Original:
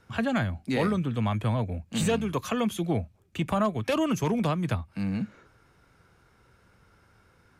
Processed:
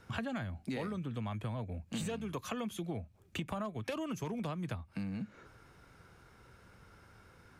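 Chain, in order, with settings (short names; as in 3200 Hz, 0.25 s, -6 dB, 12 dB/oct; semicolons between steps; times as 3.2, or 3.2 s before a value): compressor 6:1, threshold -38 dBFS, peak gain reduction 15.5 dB; gain +1.5 dB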